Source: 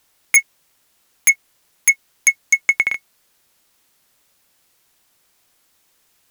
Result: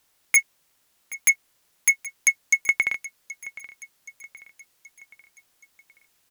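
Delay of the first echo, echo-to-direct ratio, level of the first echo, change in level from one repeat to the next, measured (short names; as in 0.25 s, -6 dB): 0.775 s, -16.5 dB, -18.0 dB, -6.0 dB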